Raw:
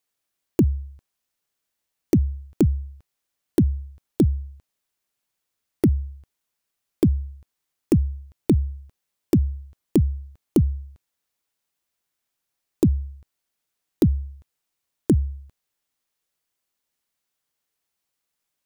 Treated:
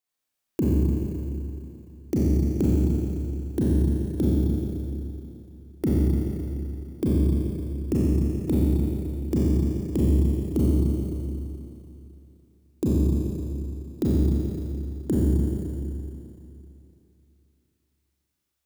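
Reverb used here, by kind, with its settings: Schroeder reverb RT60 2.9 s, combs from 29 ms, DRR -7.5 dB; gain -8.5 dB

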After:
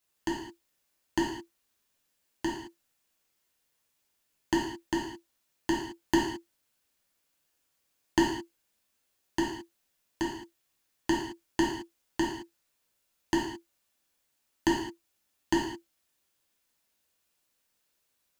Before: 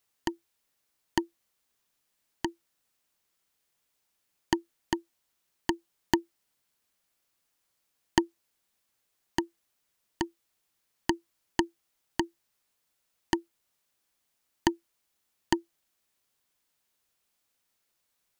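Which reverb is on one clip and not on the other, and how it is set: non-linear reverb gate 0.24 s falling, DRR -5 dB; gain -5 dB

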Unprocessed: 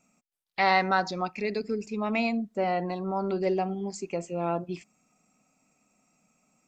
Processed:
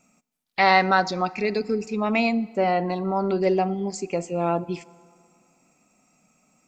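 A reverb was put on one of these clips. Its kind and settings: FDN reverb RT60 2.2 s, low-frequency decay 1×, high-frequency decay 0.7×, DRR 20 dB; gain +5.5 dB

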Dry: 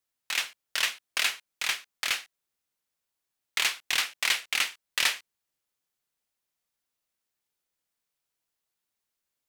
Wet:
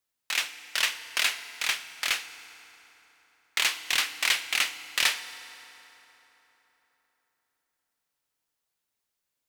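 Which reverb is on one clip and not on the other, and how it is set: FDN reverb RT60 3.9 s, high-frequency decay 0.65×, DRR 11 dB; gain +1 dB

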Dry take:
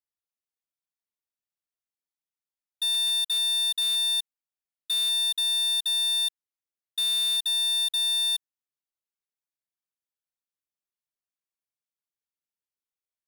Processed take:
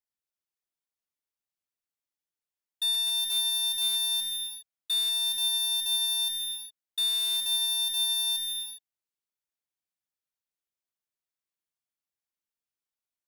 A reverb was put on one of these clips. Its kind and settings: non-linear reverb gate 0.43 s flat, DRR 5 dB; gain -2 dB

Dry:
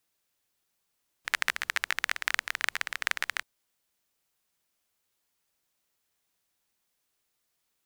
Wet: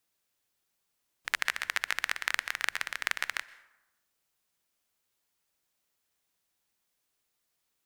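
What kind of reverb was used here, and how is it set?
plate-style reverb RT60 1 s, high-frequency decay 0.55×, pre-delay 0.11 s, DRR 18.5 dB; gain -1.5 dB

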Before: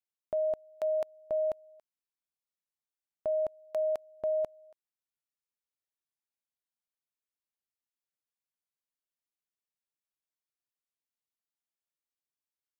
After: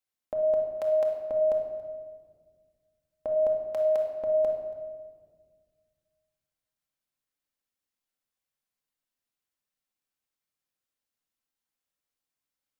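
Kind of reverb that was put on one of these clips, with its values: shoebox room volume 2000 m³, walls mixed, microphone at 2.1 m; gain +2 dB

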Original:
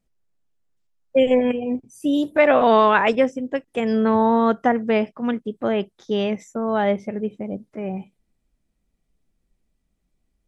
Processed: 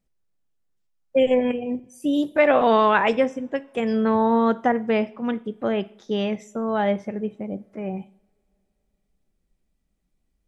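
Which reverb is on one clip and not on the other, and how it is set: two-slope reverb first 0.5 s, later 3.4 s, from -28 dB, DRR 15 dB; gain -2 dB

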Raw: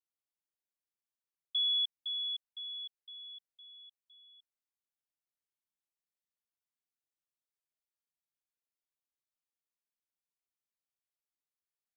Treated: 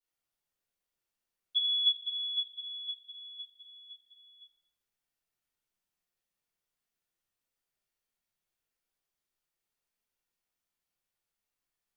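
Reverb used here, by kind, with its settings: shoebox room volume 170 m³, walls mixed, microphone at 4.4 m; gain -6 dB

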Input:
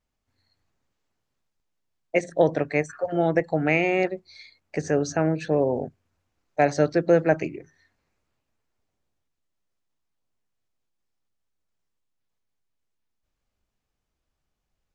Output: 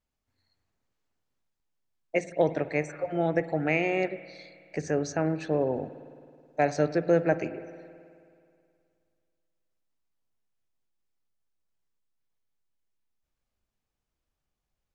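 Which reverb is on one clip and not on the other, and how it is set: spring tank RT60 2.3 s, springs 53 ms, chirp 60 ms, DRR 13.5 dB; gain -4.5 dB

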